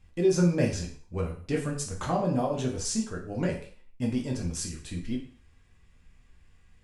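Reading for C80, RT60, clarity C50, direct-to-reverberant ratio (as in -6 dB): 11.5 dB, 0.45 s, 8.0 dB, -1.5 dB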